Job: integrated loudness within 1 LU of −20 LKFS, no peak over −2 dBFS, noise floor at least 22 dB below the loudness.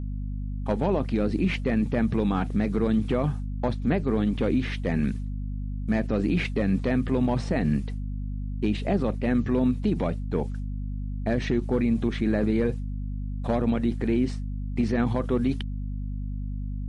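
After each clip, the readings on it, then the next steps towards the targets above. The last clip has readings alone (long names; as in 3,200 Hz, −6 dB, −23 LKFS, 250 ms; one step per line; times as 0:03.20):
mains hum 50 Hz; hum harmonics up to 250 Hz; level of the hum −28 dBFS; integrated loudness −27.0 LKFS; sample peak −13.0 dBFS; target loudness −20.0 LKFS
→ mains-hum notches 50/100/150/200/250 Hz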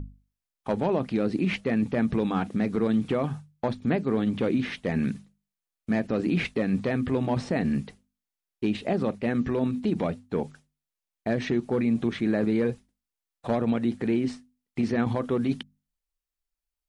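mains hum none found; integrated loudness −27.5 LKFS; sample peak −14.0 dBFS; target loudness −20.0 LKFS
→ level +7.5 dB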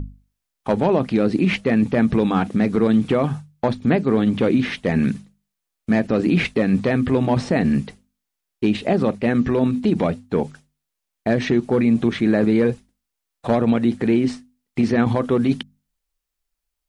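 integrated loudness −20.0 LKFS; sample peak −6.5 dBFS; background noise floor −81 dBFS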